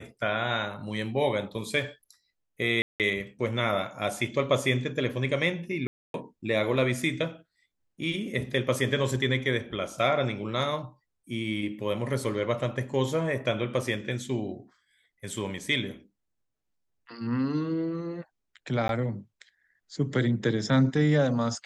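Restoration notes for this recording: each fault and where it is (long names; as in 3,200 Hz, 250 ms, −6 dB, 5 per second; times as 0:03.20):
0:02.82–0:03.00: drop-out 178 ms
0:05.87–0:06.14: drop-out 272 ms
0:18.88–0:18.89: drop-out 12 ms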